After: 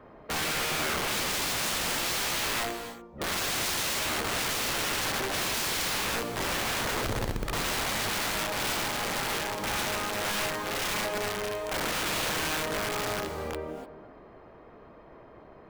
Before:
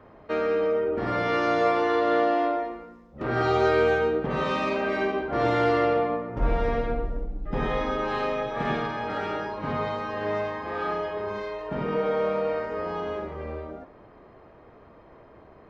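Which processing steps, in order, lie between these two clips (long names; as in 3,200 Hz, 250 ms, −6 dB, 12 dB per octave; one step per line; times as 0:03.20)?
parametric band 92 Hz −8 dB 0.31 octaves
wrap-around overflow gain 25.5 dB
reverb whose tail is shaped and stops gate 320 ms rising, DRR 10.5 dB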